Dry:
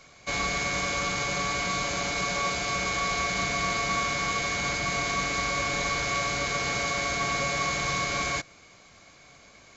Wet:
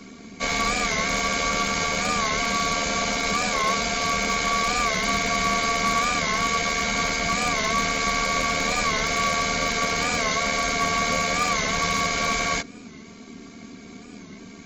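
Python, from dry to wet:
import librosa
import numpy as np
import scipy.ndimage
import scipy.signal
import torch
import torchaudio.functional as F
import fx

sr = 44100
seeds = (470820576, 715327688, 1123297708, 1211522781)

y = np.minimum(x, 2.0 * 10.0 ** (-20.5 / 20.0) - x)
y = fx.dmg_noise_band(y, sr, seeds[0], low_hz=130.0, high_hz=360.0, level_db=-48.0)
y = fx.stretch_grains(y, sr, factor=1.5, grain_ms=26.0)
y = fx.record_warp(y, sr, rpm=45.0, depth_cents=100.0)
y = F.gain(torch.from_numpy(y), 6.0).numpy()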